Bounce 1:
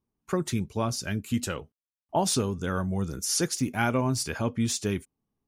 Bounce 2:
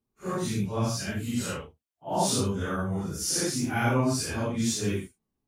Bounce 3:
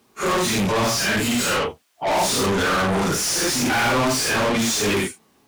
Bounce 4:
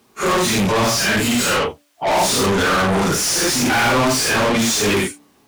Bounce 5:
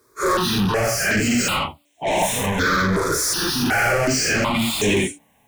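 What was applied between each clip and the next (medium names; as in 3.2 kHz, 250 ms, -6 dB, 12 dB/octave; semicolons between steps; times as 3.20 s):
phase randomisation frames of 200 ms
overdrive pedal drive 38 dB, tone 5.4 kHz, clips at -13.5 dBFS
de-hum 290.8 Hz, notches 2; trim +3.5 dB
stepped phaser 2.7 Hz 770–4700 Hz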